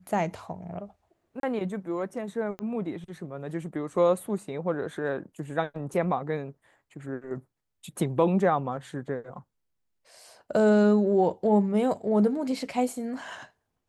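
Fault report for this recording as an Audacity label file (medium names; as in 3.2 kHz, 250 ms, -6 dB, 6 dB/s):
1.400000	1.430000	dropout 32 ms
2.590000	2.590000	pop -23 dBFS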